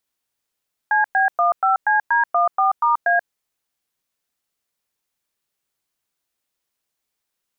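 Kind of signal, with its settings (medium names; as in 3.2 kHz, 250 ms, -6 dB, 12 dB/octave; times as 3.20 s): DTMF "CB15CD14*A", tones 133 ms, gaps 106 ms, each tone -16.5 dBFS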